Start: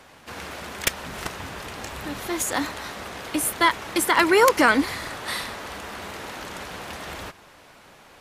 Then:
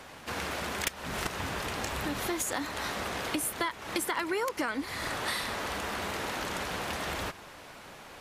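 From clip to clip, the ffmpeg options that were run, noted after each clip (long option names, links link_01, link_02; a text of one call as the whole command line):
ffmpeg -i in.wav -af "acompressor=threshold=-31dB:ratio=8,volume=2dB" out.wav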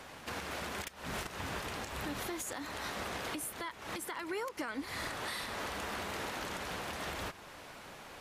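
ffmpeg -i in.wav -af "alimiter=level_in=3dB:limit=-24dB:level=0:latency=1:release=267,volume=-3dB,volume=-2dB" out.wav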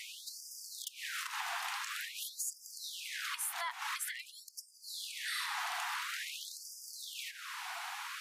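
ffmpeg -i in.wav -af "acompressor=threshold=-43dB:ratio=5,afftfilt=real='re*gte(b*sr/1024,660*pow(4800/660,0.5+0.5*sin(2*PI*0.48*pts/sr)))':imag='im*gte(b*sr/1024,660*pow(4800/660,0.5+0.5*sin(2*PI*0.48*pts/sr)))':win_size=1024:overlap=0.75,volume=9.5dB" out.wav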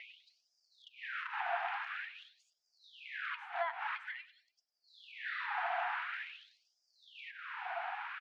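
ffmpeg -i in.wav -af "highpass=500,equalizer=frequency=680:width_type=q:width=4:gain=9,equalizer=frequency=1100:width_type=q:width=4:gain=-9,equalizer=frequency=2000:width_type=q:width=4:gain=-5,lowpass=frequency=2200:width=0.5412,lowpass=frequency=2200:width=1.3066,aecho=1:1:100|200|300:0.126|0.0466|0.0172,volume=5dB" out.wav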